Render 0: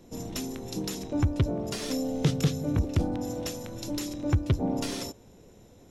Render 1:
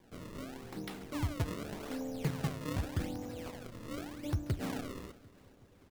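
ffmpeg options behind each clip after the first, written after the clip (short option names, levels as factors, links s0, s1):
-af "acrusher=samples=32:mix=1:aa=0.000001:lfo=1:lforange=51.2:lforate=0.85,flanger=delay=8.5:depth=4.6:regen=-88:speed=1.3:shape=triangular,aecho=1:1:373|746|1119|1492:0.0841|0.0488|0.0283|0.0164,volume=0.562"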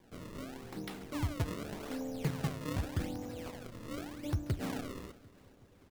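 -af anull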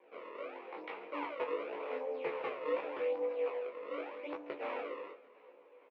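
-filter_complex "[0:a]flanger=delay=19.5:depth=2.8:speed=1.8,highpass=f=420:w=0.5412,highpass=f=420:w=1.3066,equalizer=f=490:t=q:w=4:g=10,equalizer=f=700:t=q:w=4:g=-3,equalizer=f=1000:t=q:w=4:g=6,equalizer=f=1600:t=q:w=4:g=-7,equalizer=f=2400:t=q:w=4:g=7,lowpass=f=2500:w=0.5412,lowpass=f=2500:w=1.3066,asplit=2[s0][s1];[s1]adelay=14,volume=0.531[s2];[s0][s2]amix=inputs=2:normalize=0,volume=1.68"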